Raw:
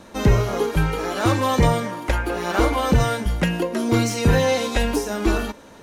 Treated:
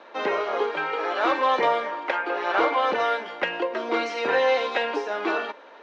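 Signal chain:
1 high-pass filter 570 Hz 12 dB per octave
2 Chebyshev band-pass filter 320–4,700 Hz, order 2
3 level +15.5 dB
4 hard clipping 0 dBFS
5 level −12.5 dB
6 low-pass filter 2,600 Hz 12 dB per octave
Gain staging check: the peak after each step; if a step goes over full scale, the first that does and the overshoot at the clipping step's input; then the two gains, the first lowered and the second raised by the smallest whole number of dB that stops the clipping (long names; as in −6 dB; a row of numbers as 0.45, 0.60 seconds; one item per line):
−9.5, −11.5, +4.0, 0.0, −12.5, −12.0 dBFS
step 3, 4.0 dB
step 3 +11.5 dB, step 5 −8.5 dB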